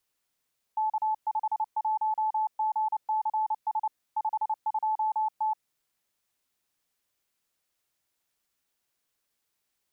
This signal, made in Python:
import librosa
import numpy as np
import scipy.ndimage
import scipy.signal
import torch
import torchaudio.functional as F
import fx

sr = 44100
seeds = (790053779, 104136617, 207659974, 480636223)

y = fx.morse(sr, text='K51GCS 52T', wpm=29, hz=867.0, level_db=-24.0)